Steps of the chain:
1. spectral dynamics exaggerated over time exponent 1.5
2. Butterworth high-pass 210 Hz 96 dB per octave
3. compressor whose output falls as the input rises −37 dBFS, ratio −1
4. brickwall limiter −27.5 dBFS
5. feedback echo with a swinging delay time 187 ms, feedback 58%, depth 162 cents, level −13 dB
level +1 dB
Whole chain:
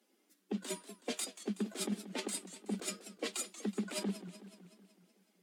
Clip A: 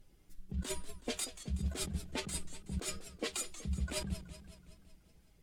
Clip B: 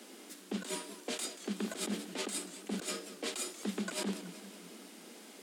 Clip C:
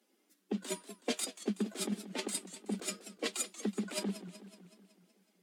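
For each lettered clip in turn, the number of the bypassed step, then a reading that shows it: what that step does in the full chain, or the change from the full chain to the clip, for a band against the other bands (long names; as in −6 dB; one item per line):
2, 125 Hz band +8.0 dB
1, 2 kHz band +2.5 dB
4, change in crest factor +3.5 dB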